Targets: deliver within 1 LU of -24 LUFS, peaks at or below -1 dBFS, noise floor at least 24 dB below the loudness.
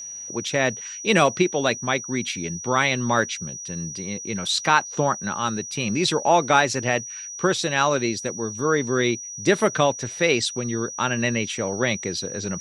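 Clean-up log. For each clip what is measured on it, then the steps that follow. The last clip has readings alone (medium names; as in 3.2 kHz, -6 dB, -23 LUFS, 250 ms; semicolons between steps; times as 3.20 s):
steady tone 5.8 kHz; tone level -33 dBFS; loudness -23.0 LUFS; peak level -3.0 dBFS; loudness target -24.0 LUFS
-> band-stop 5.8 kHz, Q 30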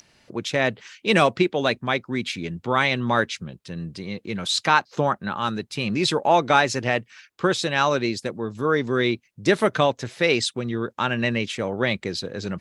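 steady tone not found; loudness -23.0 LUFS; peak level -3.0 dBFS; loudness target -24.0 LUFS
-> trim -1 dB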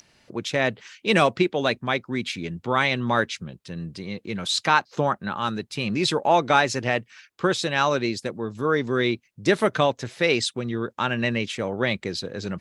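loudness -24.0 LUFS; peak level -4.0 dBFS; noise floor -66 dBFS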